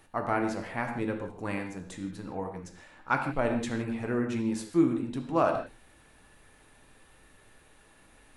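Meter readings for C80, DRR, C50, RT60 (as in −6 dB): 8.5 dB, 3.0 dB, 6.5 dB, non-exponential decay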